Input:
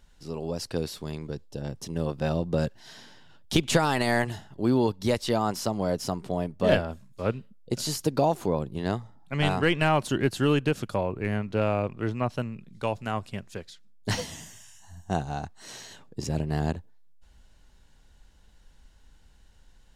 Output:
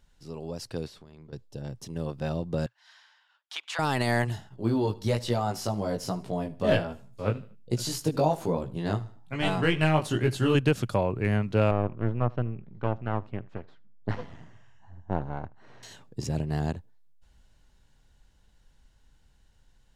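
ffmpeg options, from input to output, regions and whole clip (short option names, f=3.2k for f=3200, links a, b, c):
-filter_complex "[0:a]asettb=1/sr,asplit=3[a][b][c];[a]atrim=end=0.874[d];[b]atrim=start=0.87:end=1.33,asetpts=PTS-STARTPTS,afade=t=in:d=0.004:c=qsin,afade=t=out:st=0.456:d=0.004:c=qsin,aemphasis=mode=reproduction:type=50kf,bandreject=f=50:t=h:w=6,bandreject=f=100:t=h:w=6,bandreject=f=150:t=h:w=6,bandreject=f=200:t=h:w=6,bandreject=f=250:t=h:w=6,bandreject=f=300:t=h:w=6,bandreject=f=350:t=h:w=6,bandreject=f=400:t=h:w=6,acompressor=threshold=-41dB:ratio=6:attack=3.2:release=140:knee=1:detection=peak[e];[c]atrim=start=1.326[f];[d][e]acrossfade=d=0.004:c1=hsin:c2=qsin[g];[g][f]acrossfade=d=0.004:c1=qsin:c2=hsin,asettb=1/sr,asplit=3[h][i][j];[h]atrim=end=2.664[k];[i]atrim=start=2.66:end=3.79,asetpts=PTS-STARTPTS,afade=t=in:d=0.004:c=qsin,afade=t=out:st=1.126:d=0.004:c=qsin,highpass=f=1k:w=0.5412,highpass=f=1k:w=1.3066,aemphasis=mode=reproduction:type=75fm[l];[j]atrim=start=3.786[m];[k][l]acrossfade=d=0.004:c1=hsin:c2=qsin[n];[n][m]acrossfade=d=0.004:c1=qsin:c2=hsin,asettb=1/sr,asplit=3[o][p][q];[o]atrim=end=4.494[r];[p]atrim=start=4.49:end=10.55,asetpts=PTS-STARTPTS,afade=t=in:d=0.004:c=qsin,afade=t=out:st=6.056:d=0.004:c=qsin,flanger=delay=16.5:depth=3.1:speed=1.2,aecho=1:1:76|152|228:0.106|0.0392|0.0145,atrim=end_sample=267246[s];[q]atrim=start=10.546[t];[r][s]acrossfade=d=0.004:c1=hsin:c2=qsin[u];[u][t]acrossfade=d=0.004:c1=qsin:c2=hsin,asettb=1/sr,asplit=3[v][w][x];[v]atrim=end=11.714[y];[w]atrim=start=11.71:end=15.83,asetpts=PTS-STARTPTS,afade=t=in:d=0.004:c=qsin,afade=t=out:st=4.116:d=0.004:c=qsin,aeval=exprs='max(val(0),0)':c=same,lowpass=1.5k,aecho=1:1:78:0.0631,atrim=end_sample=181692[z];[x]atrim=start=15.826[aa];[y][z]acrossfade=d=0.004:c1=hsin:c2=qsin[ab];[ab][aa]acrossfade=d=0.004:c1=qsin:c2=hsin,dynaudnorm=f=290:g=31:m=7dB,equalizer=f=120:w=3.2:g=6,volume=-5dB"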